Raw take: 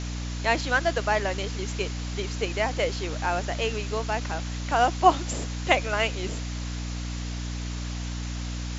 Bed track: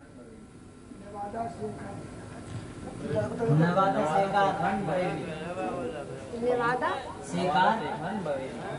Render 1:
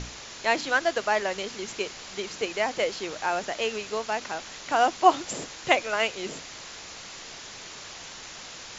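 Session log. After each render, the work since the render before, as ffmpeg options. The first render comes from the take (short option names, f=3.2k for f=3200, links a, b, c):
-af "bandreject=f=60:t=h:w=6,bandreject=f=120:t=h:w=6,bandreject=f=180:t=h:w=6,bandreject=f=240:t=h:w=6,bandreject=f=300:t=h:w=6"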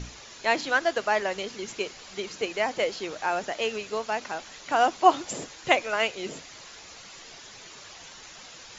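-af "afftdn=nr=7:nf=-42"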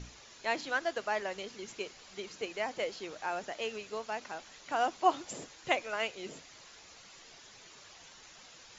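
-af "volume=-8.5dB"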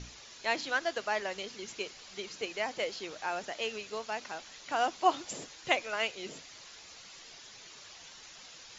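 -af "lowpass=5.9k,highshelf=f=3.5k:g=9.5"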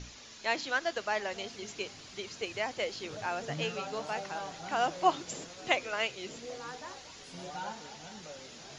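-filter_complex "[1:a]volume=-16.5dB[a];[0:a][a]amix=inputs=2:normalize=0"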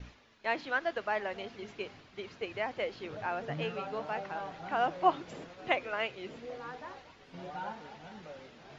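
-af "lowpass=2.4k,agate=range=-33dB:threshold=-49dB:ratio=3:detection=peak"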